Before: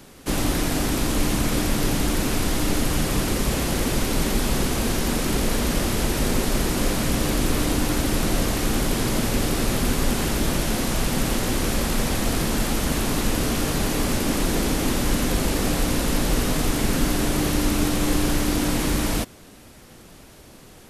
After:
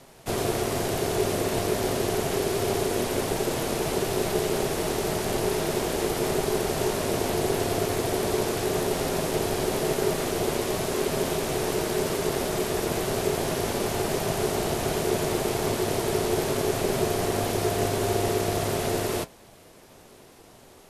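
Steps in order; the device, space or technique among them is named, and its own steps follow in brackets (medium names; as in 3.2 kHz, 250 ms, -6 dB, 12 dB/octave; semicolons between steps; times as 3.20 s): alien voice (ring modulator 400 Hz; flange 0.9 Hz, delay 7.4 ms, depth 1.3 ms, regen -70%); trim +2.5 dB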